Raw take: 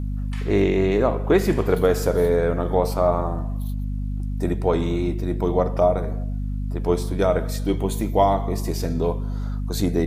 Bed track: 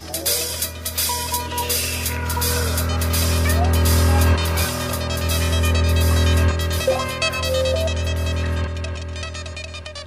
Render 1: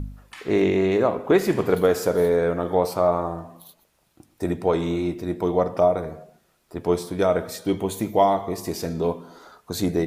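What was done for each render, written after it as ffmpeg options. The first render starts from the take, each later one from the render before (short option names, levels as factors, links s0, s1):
-af "bandreject=f=50:t=h:w=4,bandreject=f=100:t=h:w=4,bandreject=f=150:t=h:w=4,bandreject=f=200:t=h:w=4,bandreject=f=250:t=h:w=4"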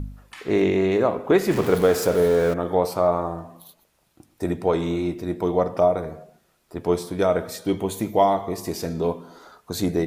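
-filter_complex "[0:a]asettb=1/sr,asplit=3[s0][s1][s2];[s0]atrim=end=1.514[s3];[s1]atrim=start=1.51:end=2.54,asetpts=PTS-STARTPTS,afade=t=in:d=0.004:c=qsin,afade=t=out:st=1.026:d=0.004:c=qsin,aeval=exprs='val(0)+0.5*0.0398*sgn(val(0))':c=same[s4];[s2]atrim=start=2.536[s5];[s3][s4]acrossfade=d=0.004:c1=hsin:c2=qsin[s6];[s6][s5]acrossfade=d=0.004:c1=qsin:c2=hsin"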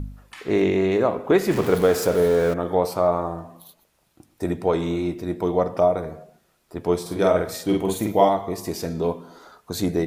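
-filter_complex "[0:a]asettb=1/sr,asplit=3[s0][s1][s2];[s0]atrim=end=7.014[s3];[s1]atrim=start=7.01:end=8.29,asetpts=PTS-STARTPTS,afade=t=in:d=0.004:c=qsin,afade=t=out:st=1.276:d=0.004:c=qsin,asplit=2[s4][s5];[s5]adelay=47,volume=0.794[s6];[s4][s6]amix=inputs=2:normalize=0,atrim=end_sample=56448[s7];[s2]atrim=start=8.286[s8];[s3][s7]acrossfade=d=0.004:c1=hsin:c2=qsin[s9];[s9][s8]acrossfade=d=0.004:c1=qsin:c2=hsin"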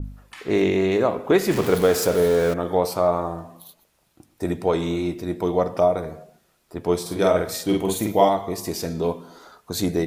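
-af "adynamicequalizer=threshold=0.0112:dfrequency=2400:dqfactor=0.7:tfrequency=2400:tqfactor=0.7:attack=5:release=100:ratio=0.375:range=2:mode=boostabove:tftype=highshelf"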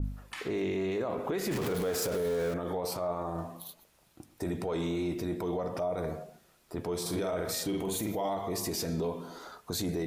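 -af "acompressor=threshold=0.0708:ratio=6,alimiter=level_in=1.06:limit=0.0631:level=0:latency=1:release=13,volume=0.944"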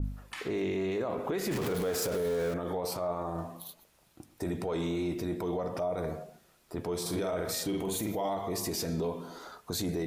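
-af anull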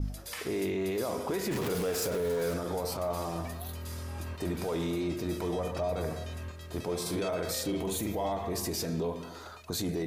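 -filter_complex "[1:a]volume=0.0668[s0];[0:a][s0]amix=inputs=2:normalize=0"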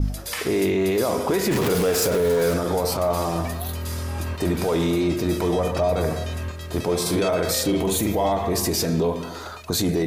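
-af "volume=3.35"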